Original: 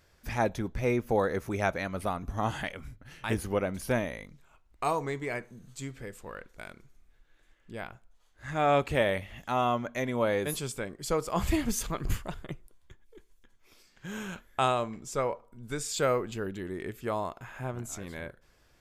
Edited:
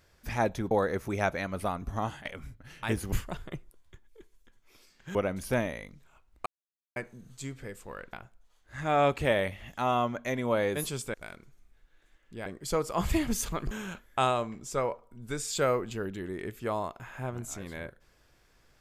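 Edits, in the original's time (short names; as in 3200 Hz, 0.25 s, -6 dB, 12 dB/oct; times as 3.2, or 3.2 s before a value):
0.71–1.12 cut
2.37–2.66 fade out, to -18 dB
4.84–5.34 mute
6.51–7.83 move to 10.84
12.09–14.12 move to 3.53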